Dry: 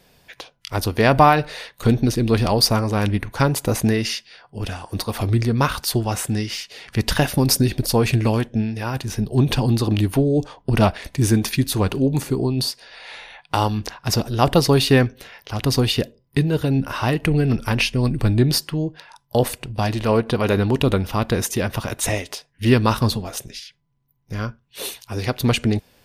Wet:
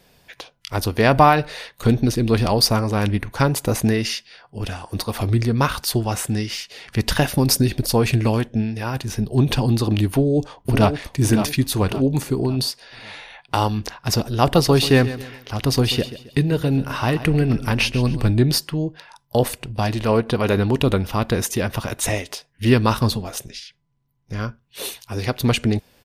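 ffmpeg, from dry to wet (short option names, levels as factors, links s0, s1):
-filter_complex "[0:a]asplit=2[s0][s1];[s1]afade=t=in:st=10.09:d=0.01,afade=t=out:st=10.9:d=0.01,aecho=0:1:560|1120|1680|2240|2800:0.398107|0.159243|0.0636971|0.0254789|0.0101915[s2];[s0][s2]amix=inputs=2:normalize=0,asettb=1/sr,asplit=3[s3][s4][s5];[s3]atrim=end=14.414[s6];[s4]atrim=start=14.41:end=18.31,asetpts=PTS-STARTPTS,afade=t=in:d=0.004:c=qsin,afade=t=out:st=3.896:d=0.004:c=qsin,aecho=1:1:135|270|405|540:0.2|0.0738|0.0273|0.0101,atrim=end_sample=171990[s7];[s5]atrim=start=18.306[s8];[s6][s7]acrossfade=d=0.004:c1=hsin:c2=qsin[s9];[s9][s8]acrossfade=d=0.004:c1=qsin:c2=hsin,asettb=1/sr,asplit=3[s10][s11][s12];[s10]atrim=end=23.484[s13];[s11]atrim=start=23.48:end=24.4,asetpts=PTS-STARTPTS,afade=t=in:d=0.004:c=qsin,afade=t=out:st=0.916:d=0.004:c=qsin,lowpass=9100[s14];[s12]atrim=start=24.396[s15];[s13][s14]acrossfade=d=0.004:c1=hsin:c2=qsin[s16];[s16][s15]acrossfade=d=0.004:c1=qsin:c2=hsin"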